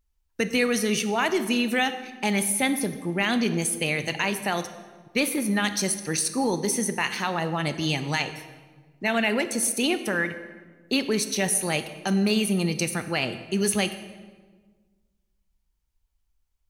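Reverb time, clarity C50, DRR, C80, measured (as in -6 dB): 1.4 s, 11.5 dB, 10.0 dB, 13.0 dB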